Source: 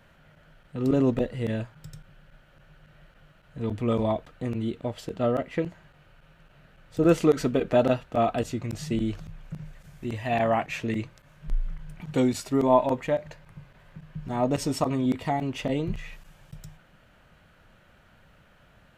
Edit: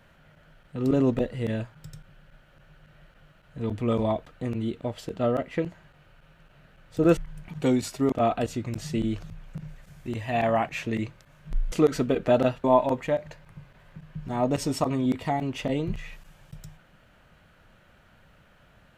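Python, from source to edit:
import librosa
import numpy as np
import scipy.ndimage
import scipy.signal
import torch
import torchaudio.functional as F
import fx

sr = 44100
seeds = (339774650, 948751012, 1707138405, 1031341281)

y = fx.edit(x, sr, fx.swap(start_s=7.17, length_s=0.92, other_s=11.69, other_length_s=0.95), tone=tone)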